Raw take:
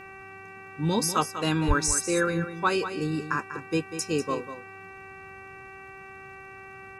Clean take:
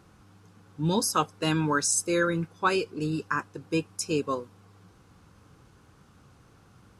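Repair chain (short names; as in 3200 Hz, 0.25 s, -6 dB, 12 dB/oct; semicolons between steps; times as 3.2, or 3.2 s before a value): de-click; de-hum 386 Hz, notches 7; de-plosive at 1.67; inverse comb 0.194 s -10.5 dB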